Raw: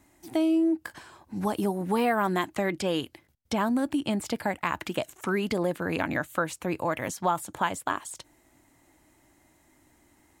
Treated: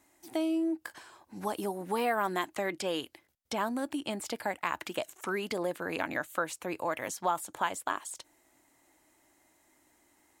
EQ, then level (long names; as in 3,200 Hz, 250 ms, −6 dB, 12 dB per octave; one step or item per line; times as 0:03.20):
bass and treble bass −11 dB, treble +2 dB
−3.5 dB